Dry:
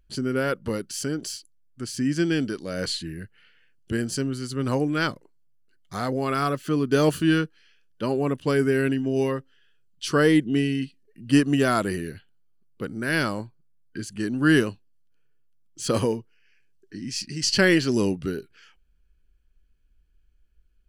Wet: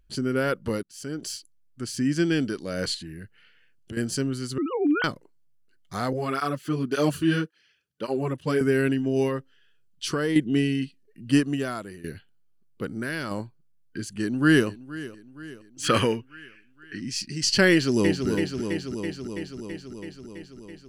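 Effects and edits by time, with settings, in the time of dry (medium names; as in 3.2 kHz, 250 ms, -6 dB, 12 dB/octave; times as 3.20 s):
0.83–1.33 s: fade in
2.94–3.97 s: compression 3:1, threshold -36 dBFS
4.58–5.04 s: formants replaced by sine waves
6.13–8.61 s: cancelling through-zero flanger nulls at 1.8 Hz, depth 5 ms
9.27–10.36 s: compression, threshold -21 dBFS
11.26–12.04 s: fade out quadratic, to -14.5 dB
12.85–13.31 s: compression, threshold -25 dBFS
14.01–14.67 s: echo throw 470 ms, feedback 55%, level -17 dB
15.83–17.00 s: high-order bell 2 kHz +11.5 dB
17.71–18.28 s: echo throw 330 ms, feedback 75%, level -5.5 dB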